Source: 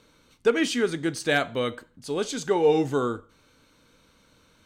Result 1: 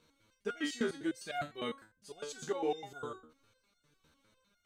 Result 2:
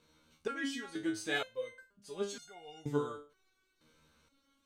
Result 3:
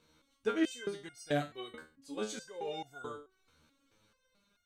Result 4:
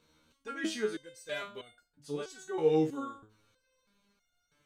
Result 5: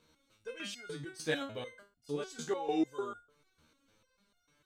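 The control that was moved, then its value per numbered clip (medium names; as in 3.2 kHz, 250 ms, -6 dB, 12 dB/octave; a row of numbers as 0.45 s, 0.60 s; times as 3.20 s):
resonator arpeggio, rate: 9.9 Hz, 2.1 Hz, 4.6 Hz, 3.1 Hz, 6.7 Hz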